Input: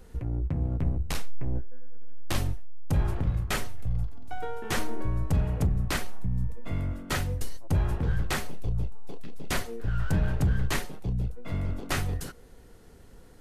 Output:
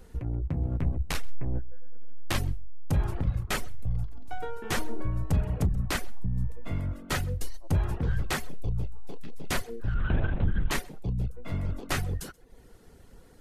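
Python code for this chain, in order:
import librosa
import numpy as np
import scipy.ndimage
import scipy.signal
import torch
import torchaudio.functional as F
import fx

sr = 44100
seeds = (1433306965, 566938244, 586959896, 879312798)

y = fx.dynamic_eq(x, sr, hz=1900.0, q=0.81, threshold_db=-50.0, ratio=4.0, max_db=4, at=(0.68, 2.39))
y = y + 10.0 ** (-16.0 / 20.0) * np.pad(y, (int(129 * sr / 1000.0), 0))[:len(y)]
y = fx.dereverb_blind(y, sr, rt60_s=0.51)
y = fx.lpc_vocoder(y, sr, seeds[0], excitation='whisper', order=10, at=(9.94, 10.71))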